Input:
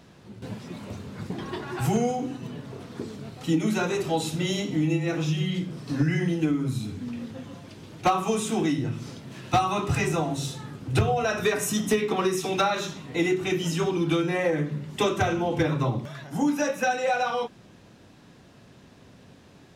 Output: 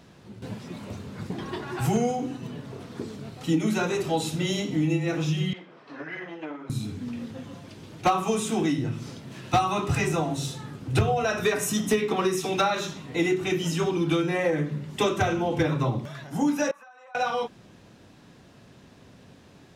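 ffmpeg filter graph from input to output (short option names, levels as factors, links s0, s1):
-filter_complex "[0:a]asettb=1/sr,asplit=3[s0][s1][s2];[s0]atrim=end=5.534[s3];[s1]atrim=start=5.53:end=6.7,asetpts=PTS-STARTPTS,afade=t=in:d=0.004:c=qsin,afade=t=out:st=1.166:d=0.004:c=qsin,aeval=exprs='clip(val(0),-1,0.0631)':c=same,highpass=610,lowpass=2100[s4];[s2]atrim=start=6.696[s5];[s3][s4]acrossfade=d=0.004:c1=hsin:c2=qsin[s6];[s6][s5]acrossfade=d=0.004:c1=qsin:c2=hsin,asettb=1/sr,asplit=3[s7][s8][s9];[s7]atrim=end=16.714[s10];[s8]atrim=start=16.71:end=17.15,asetpts=PTS-STARTPTS,afade=t=in:d=0.004:c=qsin,afade=t=out:st=0.436:d=0.004:c=qsin,bandpass=f=1100:t=q:w=6.1,aemphasis=mode=production:type=75kf,acompressor=threshold=0.00447:ratio=6:attack=3.2:release=140:knee=1:detection=peak[s11];[s9]atrim=start=17.146[s12];[s10][s11]acrossfade=d=0.004:c1=hsin:c2=qsin[s13];[s13][s12]acrossfade=d=0.004:c1=qsin:c2=hsin"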